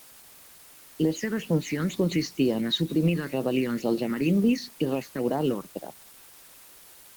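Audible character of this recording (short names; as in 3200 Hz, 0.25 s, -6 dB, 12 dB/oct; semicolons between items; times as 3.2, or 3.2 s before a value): phasing stages 6, 2.1 Hz, lowest notch 670–2400 Hz; a quantiser's noise floor 8-bit, dither triangular; Opus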